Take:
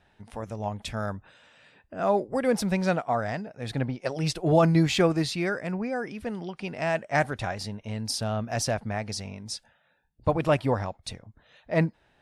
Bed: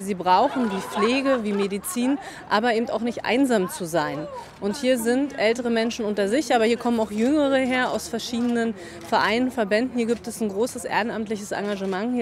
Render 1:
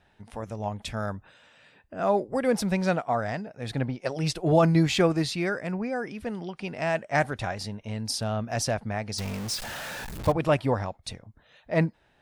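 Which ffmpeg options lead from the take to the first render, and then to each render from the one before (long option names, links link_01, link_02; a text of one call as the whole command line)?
ffmpeg -i in.wav -filter_complex "[0:a]asettb=1/sr,asplit=3[link_01][link_02][link_03];[link_01]atrim=end=9.184[link_04];[link_02]atrim=start=9.18:end=10.32,asetpts=PTS-STARTPTS,afade=type=in:duration=0.004:curve=qsin,afade=type=out:start_time=1.136:duration=0.004:curve=qsin,aeval=exprs='val(0)+0.5*0.0299*sgn(val(0))':channel_layout=same[link_05];[link_03]atrim=start=10.316[link_06];[link_04][link_05]acrossfade=duration=0.004:curve1=hsin:curve2=qsin[link_07];[link_07][link_06]acrossfade=duration=0.004:curve1=qsin:curve2=hsin" out.wav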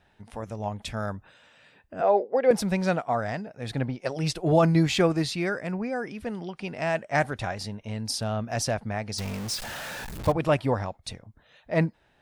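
ffmpeg -i in.wav -filter_complex "[0:a]asettb=1/sr,asplit=3[link_01][link_02][link_03];[link_01]atrim=end=2.014[link_04];[link_02]atrim=start=2.01:end=2.51,asetpts=PTS-STARTPTS,afade=type=in:duration=0.004:curve=qsin,afade=type=out:start_time=0.496:duration=0.004:curve=qsin,highpass=frequency=260:width=0.5412,highpass=frequency=260:width=1.3066,equalizer=frequency=310:width_type=q:width=4:gain=-9,equalizer=frequency=470:width_type=q:width=4:gain=9,equalizer=frequency=740:width_type=q:width=4:gain=5,equalizer=frequency=1200:width_type=q:width=4:gain=-5,equalizer=frequency=3400:width_type=q:width=4:gain=-5,lowpass=frequency=4500:width=0.5412,lowpass=frequency=4500:width=1.3066[link_05];[link_03]atrim=start=2.506[link_06];[link_04][link_05]acrossfade=duration=0.004:curve1=hsin:curve2=qsin[link_07];[link_07][link_06]acrossfade=duration=0.004:curve1=qsin:curve2=hsin" out.wav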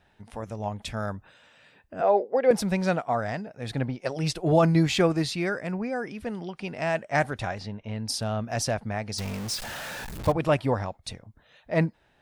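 ffmpeg -i in.wav -filter_complex "[0:a]asplit=3[link_01][link_02][link_03];[link_01]afade=type=out:start_time=7.58:duration=0.02[link_04];[link_02]lowpass=3700,afade=type=in:start_time=7.58:duration=0.02,afade=type=out:start_time=8.07:duration=0.02[link_05];[link_03]afade=type=in:start_time=8.07:duration=0.02[link_06];[link_04][link_05][link_06]amix=inputs=3:normalize=0" out.wav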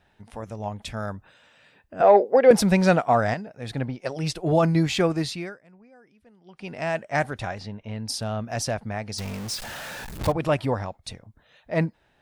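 ffmpeg -i in.wav -filter_complex "[0:a]asettb=1/sr,asplit=3[link_01][link_02][link_03];[link_01]atrim=end=2.004[link_04];[link_02]atrim=start=2:end=3.34,asetpts=PTS-STARTPTS,afade=type=in:duration=0.004:curve=qsin,afade=type=out:start_time=1.336:duration=0.004:curve=qsin,acontrast=79[link_05];[link_03]atrim=start=3.336[link_06];[link_04][link_05]acrossfade=duration=0.004:curve1=hsin:curve2=qsin[link_07];[link_07][link_06]acrossfade=duration=0.004:curve1=qsin:curve2=hsin,asettb=1/sr,asplit=3[link_08][link_09][link_10];[link_08]atrim=end=10.214[link_11];[link_09]atrim=start=10.21:end=10.7,asetpts=PTS-STARTPTS,afade=type=in:duration=0.004:curve=qsin,afade=type=out:start_time=0.486:duration=0.004:curve=qsin,acompressor=mode=upward:threshold=-23dB:ratio=2.5:attack=3.2:release=140:knee=2.83:detection=peak[link_12];[link_10]atrim=start=10.696[link_13];[link_11][link_12]acrossfade=duration=0.004:curve1=hsin:curve2=qsin[link_14];[link_14][link_13]acrossfade=duration=0.004:curve1=qsin:curve2=hsin,asplit=3[link_15][link_16][link_17];[link_15]atrim=end=5.58,asetpts=PTS-STARTPTS,afade=type=out:start_time=5.29:duration=0.29:silence=0.0749894[link_18];[link_16]atrim=start=5.58:end=6.44,asetpts=PTS-STARTPTS,volume=-22.5dB[link_19];[link_17]atrim=start=6.44,asetpts=PTS-STARTPTS,afade=type=in:duration=0.29:silence=0.0749894[link_20];[link_18][link_19][link_20]concat=n=3:v=0:a=1" out.wav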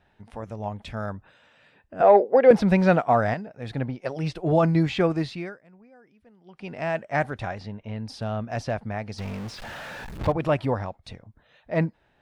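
ffmpeg -i in.wav -filter_complex "[0:a]acrossover=split=4200[link_01][link_02];[link_02]acompressor=threshold=-43dB:ratio=4:attack=1:release=60[link_03];[link_01][link_03]amix=inputs=2:normalize=0,highshelf=frequency=5200:gain=-10.5" out.wav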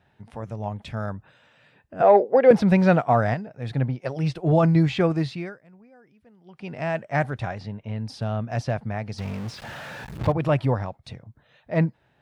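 ffmpeg -i in.wav -af "highpass=55,equalizer=frequency=130:width=2.1:gain=7" out.wav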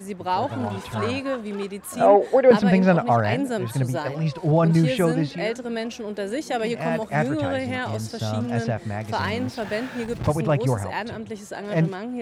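ffmpeg -i in.wav -i bed.wav -filter_complex "[1:a]volume=-6dB[link_01];[0:a][link_01]amix=inputs=2:normalize=0" out.wav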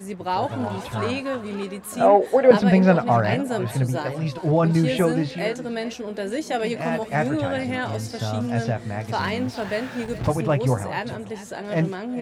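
ffmpeg -i in.wav -filter_complex "[0:a]asplit=2[link_01][link_02];[link_02]adelay=16,volume=-11dB[link_03];[link_01][link_03]amix=inputs=2:normalize=0,aecho=1:1:412:0.158" out.wav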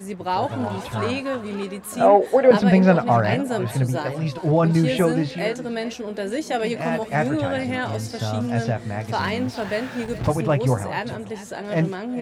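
ffmpeg -i in.wav -af "volume=1dB,alimiter=limit=-3dB:level=0:latency=1" out.wav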